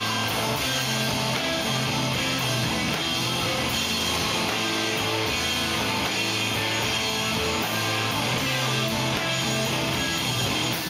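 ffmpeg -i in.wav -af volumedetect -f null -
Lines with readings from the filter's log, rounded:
mean_volume: -25.3 dB
max_volume: -11.4 dB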